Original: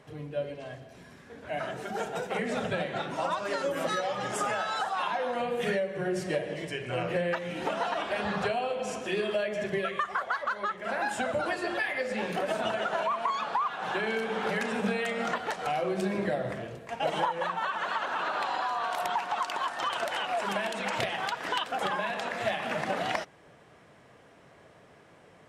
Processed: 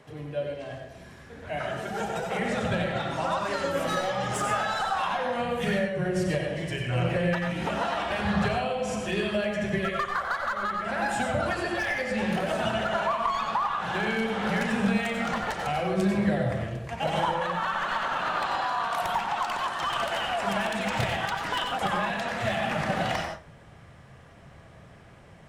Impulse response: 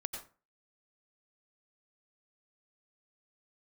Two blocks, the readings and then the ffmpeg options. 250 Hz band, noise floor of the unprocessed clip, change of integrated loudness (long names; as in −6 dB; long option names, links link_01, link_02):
+6.5 dB, −56 dBFS, +3.0 dB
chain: -filter_complex "[0:a]acrossover=split=630|970[link_01][link_02][link_03];[link_03]asoftclip=type=hard:threshold=-29dB[link_04];[link_01][link_02][link_04]amix=inputs=3:normalize=0,asubboost=boost=5:cutoff=150[link_05];[1:a]atrim=start_sample=2205[link_06];[link_05][link_06]afir=irnorm=-1:irlink=0,volume=3.5dB"